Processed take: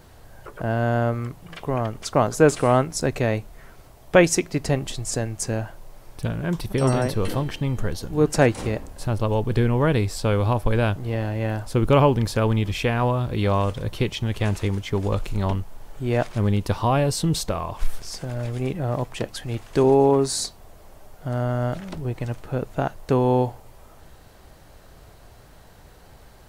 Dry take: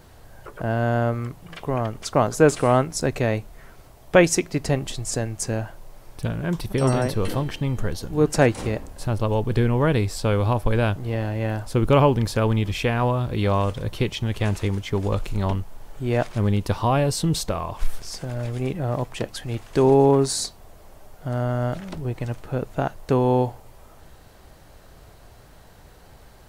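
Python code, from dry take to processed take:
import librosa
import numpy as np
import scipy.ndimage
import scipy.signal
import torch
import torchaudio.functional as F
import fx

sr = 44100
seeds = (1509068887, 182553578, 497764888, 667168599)

y = fx.notch_comb(x, sr, f0_hz=150.0, at=(19.83, 20.33))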